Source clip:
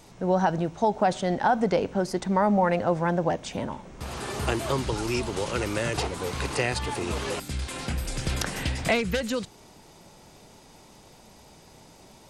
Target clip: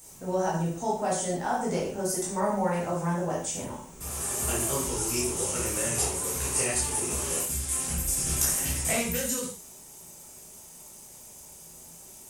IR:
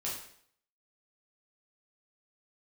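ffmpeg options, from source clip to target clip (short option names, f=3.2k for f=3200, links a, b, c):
-filter_complex "[0:a]aexciter=amount=11.6:drive=3.2:freq=6.3k,acrusher=bits=7:mix=0:aa=0.5[a];[1:a]atrim=start_sample=2205,afade=t=out:st=0.22:d=0.01,atrim=end_sample=10143[b];[a][b]afir=irnorm=-1:irlink=0,volume=-7dB"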